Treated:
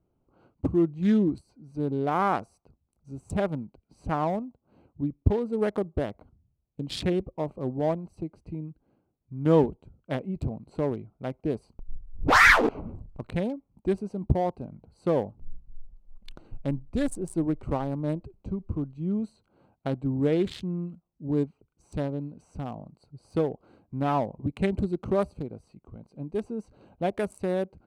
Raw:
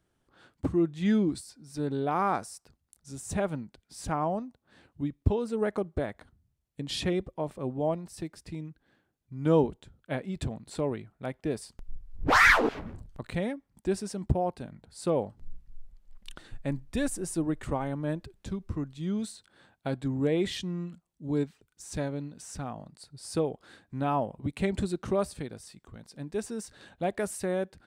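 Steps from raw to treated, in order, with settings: Wiener smoothing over 25 samples; gain +3 dB

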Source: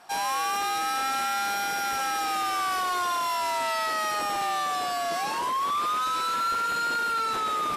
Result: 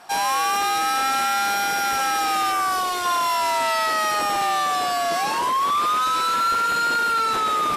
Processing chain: 2.51–3.04 bell 4800 Hz -> 980 Hz -7.5 dB 0.87 oct; gain +6 dB

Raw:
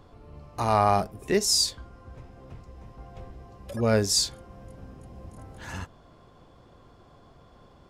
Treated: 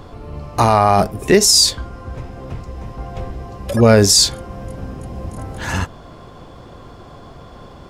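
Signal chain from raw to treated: maximiser +16.5 dB; gain -1 dB

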